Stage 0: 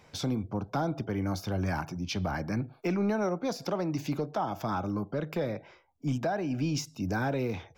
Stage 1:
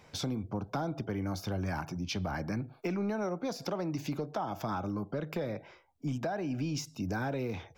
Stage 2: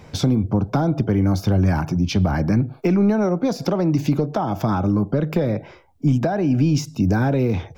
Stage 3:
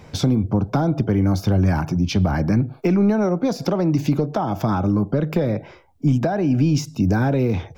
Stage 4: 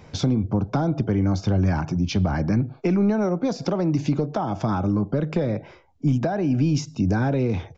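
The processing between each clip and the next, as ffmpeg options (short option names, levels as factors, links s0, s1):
-af "acompressor=threshold=0.0251:ratio=2.5"
-af "lowshelf=f=450:g=10,volume=2.66"
-af anull
-af "aresample=16000,aresample=44100,volume=0.708"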